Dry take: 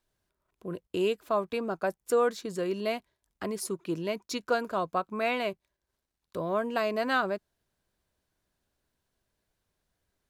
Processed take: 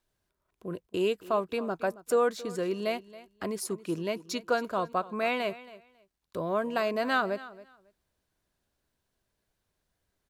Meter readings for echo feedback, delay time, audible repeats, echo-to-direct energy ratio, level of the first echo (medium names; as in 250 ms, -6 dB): 18%, 274 ms, 2, -18.0 dB, -18.0 dB